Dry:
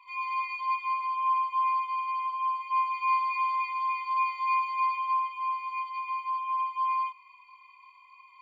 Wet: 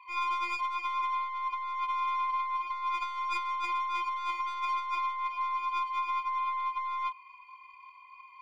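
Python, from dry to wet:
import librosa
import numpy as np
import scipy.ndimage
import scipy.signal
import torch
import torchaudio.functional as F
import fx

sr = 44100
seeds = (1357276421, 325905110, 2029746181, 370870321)

y = fx.tracing_dist(x, sr, depth_ms=0.17)
y = fx.bass_treble(y, sr, bass_db=-6, treble_db=-11)
y = fx.over_compress(y, sr, threshold_db=-32.0, ratio=-1.0)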